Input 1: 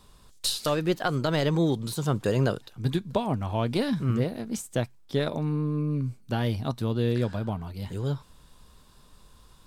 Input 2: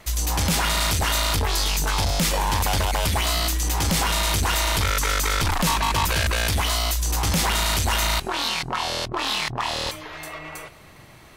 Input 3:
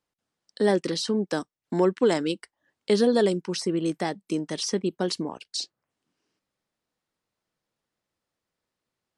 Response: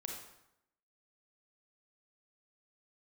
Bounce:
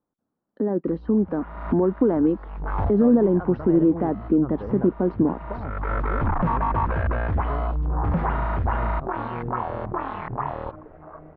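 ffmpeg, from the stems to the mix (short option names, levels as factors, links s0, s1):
-filter_complex "[0:a]adelay=2350,volume=0.237[s0];[1:a]afwtdn=0.0251,acrusher=bits=7:mix=0:aa=0.000001,adelay=800,volume=0.668[s1];[2:a]alimiter=limit=0.0944:level=0:latency=1:release=65,equalizer=f=250:t=o:w=1:g=8,equalizer=f=2000:t=o:w=1:g=-4,equalizer=f=8000:t=o:w=1:g=-4,volume=1.26,asplit=2[s2][s3];[s3]apad=whole_len=536537[s4];[s1][s4]sidechaincompress=threshold=0.0126:ratio=10:attack=16:release=390[s5];[s0][s5][s2]amix=inputs=3:normalize=0,lowpass=f=1400:w=0.5412,lowpass=f=1400:w=1.3066,dynaudnorm=f=240:g=13:m=1.58"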